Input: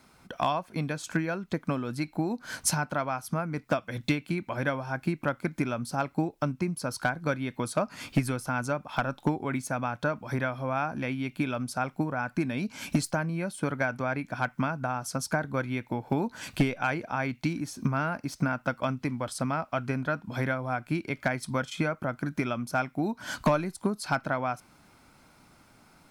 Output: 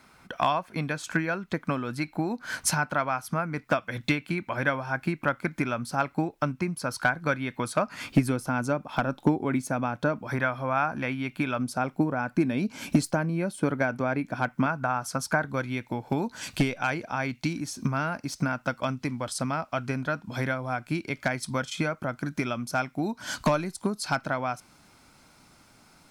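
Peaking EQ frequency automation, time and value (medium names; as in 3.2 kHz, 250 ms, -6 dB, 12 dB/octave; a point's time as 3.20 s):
peaking EQ +5.5 dB 1.9 oct
1.7 kHz
from 8.10 s 300 Hz
from 10.27 s 1.4 kHz
from 11.59 s 330 Hz
from 14.66 s 1.3 kHz
from 15.49 s 6 kHz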